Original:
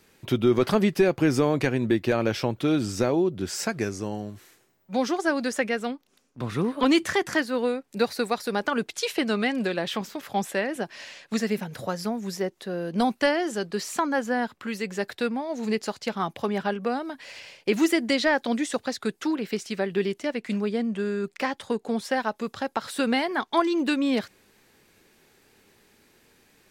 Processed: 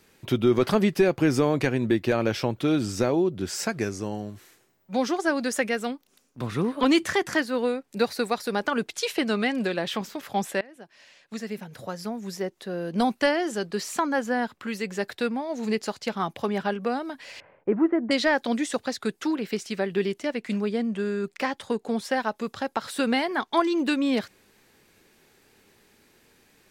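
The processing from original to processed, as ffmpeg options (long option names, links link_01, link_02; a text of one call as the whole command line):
ffmpeg -i in.wav -filter_complex "[0:a]asettb=1/sr,asplit=3[link_01][link_02][link_03];[link_01]atrim=end=5.514[link_04];[link_02]atrim=start=5.51:end=6.47,asetpts=PTS-STARTPTS,afade=type=in:duration=0.004:curve=qsin,afade=type=out:start_time=0.956:duration=0.004:curve=qsin,highshelf=frequency=7600:gain=8.5[link_05];[link_03]atrim=start=6.466[link_06];[link_04][link_05]acrossfade=duration=0.004:curve1=hsin:curve2=qsin[link_07];[link_07][link_06]acrossfade=duration=0.004:curve1=qsin:curve2=hsin,asettb=1/sr,asplit=3[link_08][link_09][link_10];[link_08]atrim=end=17.404[link_11];[link_09]atrim=start=17.4:end=18.11,asetpts=PTS-STARTPTS,afade=type=in:duration=0.004:curve=qsin,afade=type=out:start_time=0.706:duration=0.004:curve=qsin,lowpass=frequency=1400:width=0.5412,lowpass=frequency=1400:width=1.3066[link_12];[link_10]atrim=start=18.106[link_13];[link_11][link_12]acrossfade=duration=0.004:curve1=hsin:curve2=qsin[link_14];[link_14][link_13]acrossfade=duration=0.004:curve1=qsin:curve2=hsin,asplit=2[link_15][link_16];[link_15]atrim=end=10.61,asetpts=PTS-STARTPTS,afade=type=out:start_time=10.606:duration=0.004:curve=hsin:silence=0.0841395[link_17];[link_16]atrim=start=10.61,asetpts=PTS-STARTPTS,afade=type=in:duration=2.34:silence=0.0841395[link_18];[link_17][link_18]concat=n=2:v=0:a=1" out.wav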